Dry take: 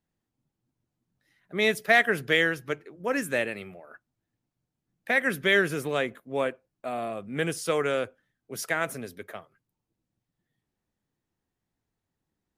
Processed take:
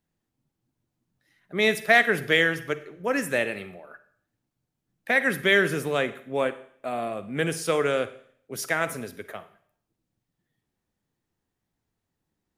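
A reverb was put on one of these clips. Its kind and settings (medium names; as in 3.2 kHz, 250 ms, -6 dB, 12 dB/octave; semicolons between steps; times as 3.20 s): Schroeder reverb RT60 0.6 s, DRR 13 dB; trim +2 dB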